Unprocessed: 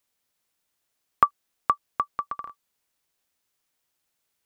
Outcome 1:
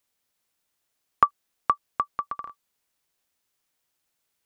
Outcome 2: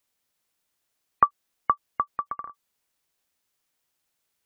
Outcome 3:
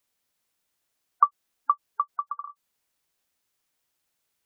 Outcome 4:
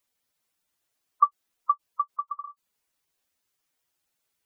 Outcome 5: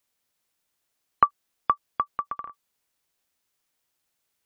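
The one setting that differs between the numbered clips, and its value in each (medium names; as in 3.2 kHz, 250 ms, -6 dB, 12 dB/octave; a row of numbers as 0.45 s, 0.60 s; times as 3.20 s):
spectral gate, under each frame's peak: -60 dB, -35 dB, -20 dB, -10 dB, -45 dB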